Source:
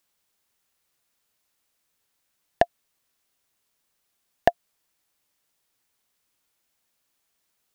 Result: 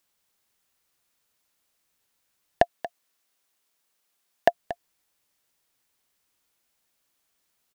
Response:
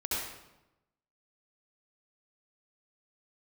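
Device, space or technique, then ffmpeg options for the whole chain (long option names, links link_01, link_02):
ducked delay: -filter_complex "[0:a]asplit=3[link_01][link_02][link_03];[link_02]adelay=232,volume=-9dB[link_04];[link_03]apad=whole_len=351671[link_05];[link_04][link_05]sidechaincompress=threshold=-26dB:ratio=8:attack=8.9:release=339[link_06];[link_01][link_06]amix=inputs=2:normalize=0,asettb=1/sr,asplit=3[link_07][link_08][link_09];[link_07]atrim=end=2.624[link_10];[link_08]atrim=start=2.62:end=4.48,asetpts=PTS-STARTPTS,afade=type=in:duration=0.004:curve=qsin,afade=type=out:start_time=1.856:duration=0.004:curve=qsin,highpass=frequency=290:poles=1[link_11];[link_09]atrim=start=4.476[link_12];[link_10][link_11]acrossfade=duration=0.004:curve1=hsin:curve2=qsin[link_13];[link_13][link_12]acrossfade=duration=0.004:curve1=qsin:curve2=hsin"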